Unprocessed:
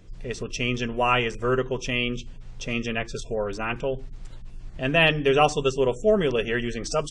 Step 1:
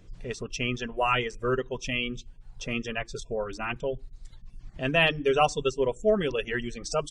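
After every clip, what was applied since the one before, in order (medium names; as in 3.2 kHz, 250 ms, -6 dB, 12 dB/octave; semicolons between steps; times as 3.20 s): reverb removal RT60 1.3 s; trim -2.5 dB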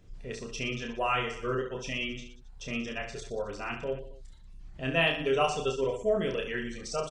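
reverse bouncing-ball echo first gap 30 ms, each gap 1.3×, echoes 5; trim -5.5 dB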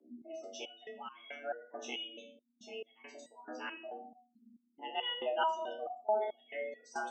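spectral gate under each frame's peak -20 dB strong; frequency shift +210 Hz; resonator arpeggio 4.6 Hz 63–1100 Hz; trim +2.5 dB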